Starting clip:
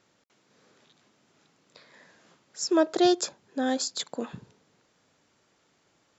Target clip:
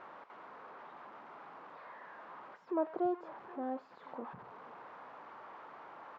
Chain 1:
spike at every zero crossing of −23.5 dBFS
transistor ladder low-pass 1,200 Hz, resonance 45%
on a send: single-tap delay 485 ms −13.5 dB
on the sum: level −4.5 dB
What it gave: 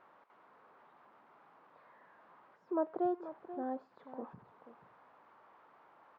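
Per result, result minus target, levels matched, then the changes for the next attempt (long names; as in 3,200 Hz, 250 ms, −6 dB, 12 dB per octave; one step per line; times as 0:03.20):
spike at every zero crossing: distortion −11 dB; echo-to-direct +8 dB
change: spike at every zero crossing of −12 dBFS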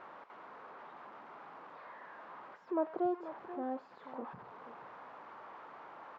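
echo-to-direct +8 dB
change: single-tap delay 485 ms −21.5 dB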